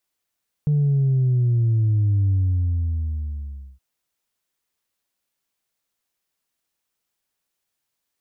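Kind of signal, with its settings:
bass drop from 150 Hz, over 3.12 s, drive 0.5 dB, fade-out 1.50 s, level −16 dB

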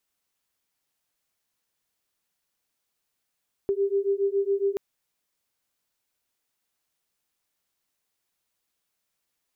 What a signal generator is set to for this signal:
two tones that beat 393 Hz, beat 7.2 Hz, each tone −25 dBFS 1.08 s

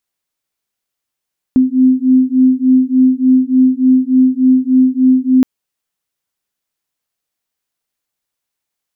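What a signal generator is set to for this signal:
two tones that beat 256 Hz, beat 3.4 Hz, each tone −10.5 dBFS 3.87 s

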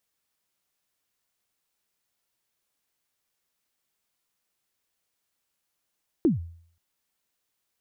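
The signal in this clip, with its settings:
synth kick length 0.53 s, from 370 Hz, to 84 Hz, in 141 ms, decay 0.56 s, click off, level −14.5 dB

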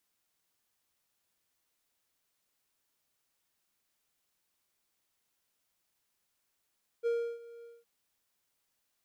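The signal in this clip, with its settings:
note with an ADSR envelope triangle 468 Hz, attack 34 ms, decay 320 ms, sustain −20.5 dB, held 0.61 s, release 204 ms −24.5 dBFS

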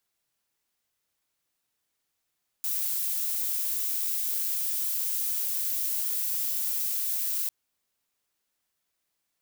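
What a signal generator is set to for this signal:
noise violet, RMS −29 dBFS 4.85 s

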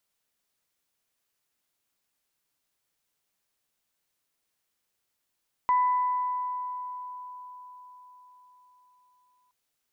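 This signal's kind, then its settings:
harmonic partials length 3.82 s, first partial 996 Hz, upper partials −18 dB, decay 4.80 s, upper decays 1.90 s, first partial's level −19 dB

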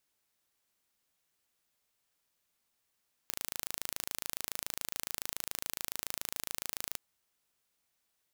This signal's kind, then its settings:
impulse train 27.1 per second, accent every 0, −8.5 dBFS 3.66 s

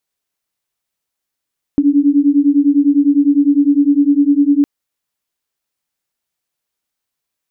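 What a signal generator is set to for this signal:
two tones that beat 281 Hz, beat 9.9 Hz, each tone −11.5 dBFS 2.86 s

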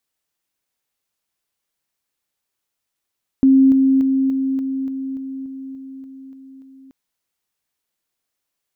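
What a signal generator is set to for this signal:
level staircase 267 Hz −8 dBFS, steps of −3 dB, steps 12, 0.29 s 0.00 s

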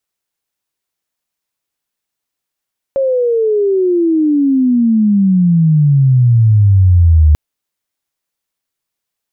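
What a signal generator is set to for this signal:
glide logarithmic 550 Hz → 74 Hz −10.5 dBFS → −4 dBFS 4.39 s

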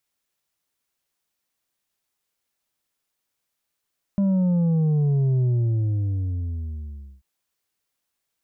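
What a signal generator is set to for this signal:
bass drop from 200 Hz, over 3.04 s, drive 5 dB, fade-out 1.80 s, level −18 dB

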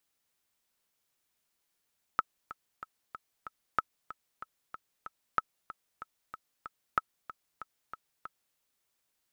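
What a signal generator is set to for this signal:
click track 188 BPM, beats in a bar 5, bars 4, 1,300 Hz, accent 16 dB −12 dBFS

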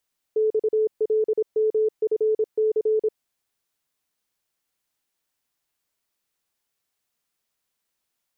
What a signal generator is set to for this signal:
Morse code "XLMFC" 26 words per minute 434 Hz −17.5 dBFS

